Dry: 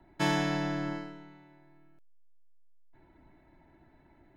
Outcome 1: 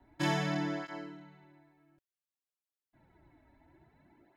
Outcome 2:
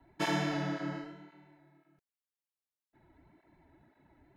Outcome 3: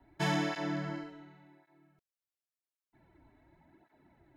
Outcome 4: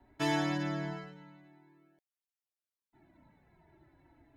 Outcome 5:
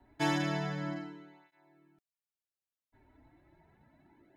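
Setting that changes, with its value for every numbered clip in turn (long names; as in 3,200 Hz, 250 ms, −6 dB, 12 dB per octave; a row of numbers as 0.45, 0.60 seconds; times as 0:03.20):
through-zero flanger with one copy inverted, nulls at: 0.57, 1.9, 0.9, 0.22, 0.33 Hertz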